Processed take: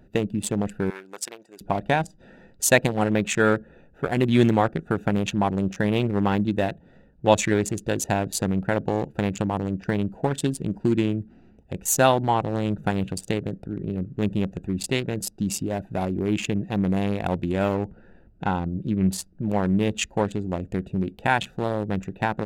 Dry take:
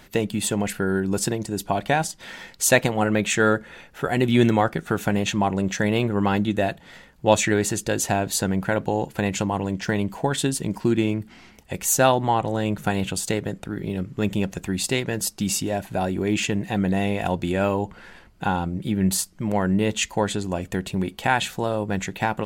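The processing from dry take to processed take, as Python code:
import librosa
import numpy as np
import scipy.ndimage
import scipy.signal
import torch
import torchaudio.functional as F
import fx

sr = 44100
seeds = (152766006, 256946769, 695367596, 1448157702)

y = fx.wiener(x, sr, points=41)
y = fx.highpass(y, sr, hz=960.0, slope=12, at=(0.9, 1.61))
y = fx.high_shelf(y, sr, hz=8000.0, db=-8.0, at=(17.75, 19.42))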